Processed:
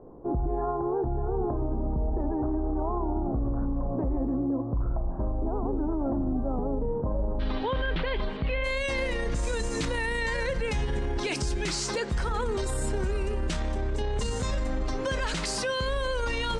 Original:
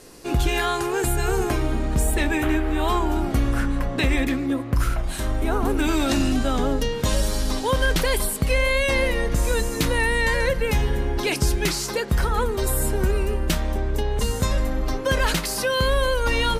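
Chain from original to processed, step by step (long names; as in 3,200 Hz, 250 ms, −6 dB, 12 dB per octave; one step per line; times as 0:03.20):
Butterworth low-pass 1,000 Hz 36 dB per octave, from 0:07.39 3,600 Hz, from 0:08.63 8,700 Hz
brickwall limiter −21 dBFS, peak gain reduction 10 dB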